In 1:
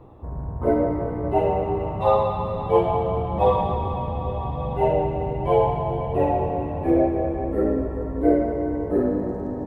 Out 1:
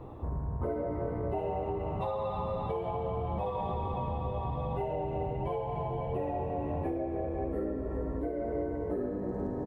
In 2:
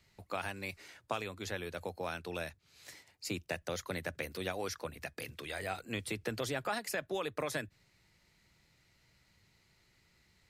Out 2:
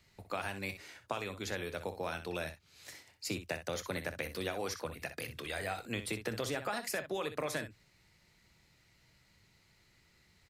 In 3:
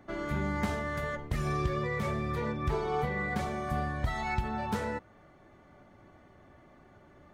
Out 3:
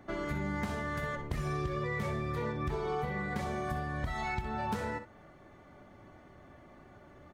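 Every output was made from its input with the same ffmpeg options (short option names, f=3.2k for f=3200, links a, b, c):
-af "alimiter=limit=-16.5dB:level=0:latency=1:release=298,acompressor=threshold=-33dB:ratio=5,aecho=1:1:25|62:0.15|0.282,volume=1.5dB"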